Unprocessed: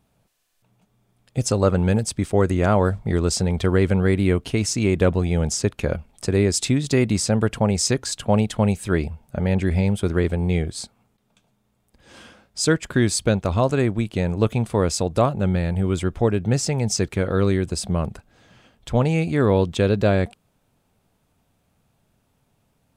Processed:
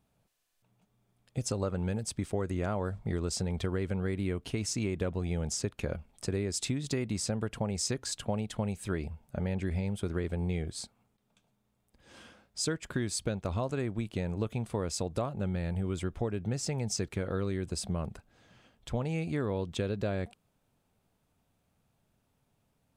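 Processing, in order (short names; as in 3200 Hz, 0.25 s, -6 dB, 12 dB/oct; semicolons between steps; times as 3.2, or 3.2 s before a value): compressor, threshold -20 dBFS, peak gain reduction 8 dB; gain -8 dB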